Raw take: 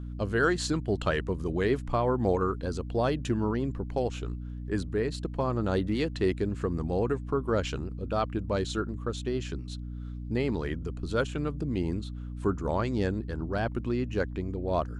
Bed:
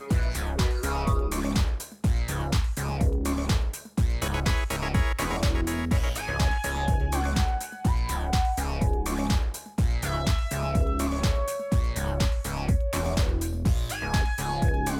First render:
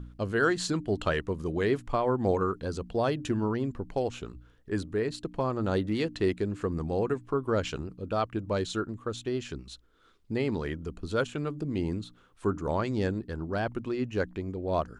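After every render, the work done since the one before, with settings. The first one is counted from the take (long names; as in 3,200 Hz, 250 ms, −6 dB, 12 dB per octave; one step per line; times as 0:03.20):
hum removal 60 Hz, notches 5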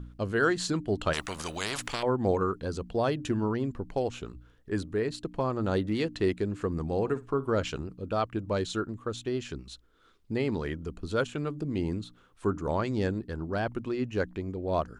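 0:01.13–0:02.03: every bin compressed towards the loudest bin 4 to 1
0:06.90–0:07.63: flutter between parallel walls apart 10 metres, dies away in 0.2 s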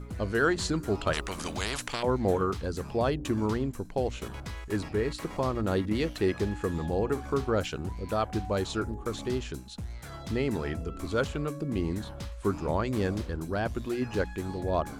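mix in bed −14.5 dB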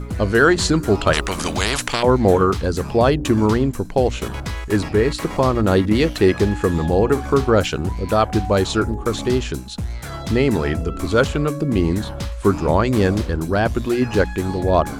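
level +12 dB
brickwall limiter −3 dBFS, peak gain reduction 1.5 dB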